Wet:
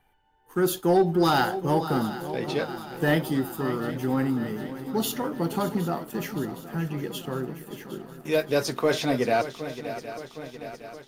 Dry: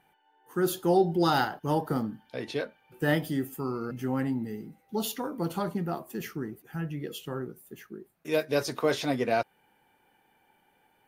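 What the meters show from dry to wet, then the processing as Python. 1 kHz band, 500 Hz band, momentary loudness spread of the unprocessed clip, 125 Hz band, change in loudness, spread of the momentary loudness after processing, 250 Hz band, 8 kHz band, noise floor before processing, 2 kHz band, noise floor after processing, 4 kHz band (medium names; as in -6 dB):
+3.5 dB, +3.5 dB, 14 LU, +4.0 dB, +3.5 dB, 16 LU, +4.0 dB, +4.0 dB, -68 dBFS, +3.5 dB, -53 dBFS, +4.0 dB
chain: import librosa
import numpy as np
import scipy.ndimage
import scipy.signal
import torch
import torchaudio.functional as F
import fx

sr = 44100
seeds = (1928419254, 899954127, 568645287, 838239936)

y = fx.echo_swing(x, sr, ms=763, ratio=3, feedback_pct=61, wet_db=-13.5)
y = fx.dmg_noise_colour(y, sr, seeds[0], colour='brown', level_db=-69.0)
y = fx.leveller(y, sr, passes=1)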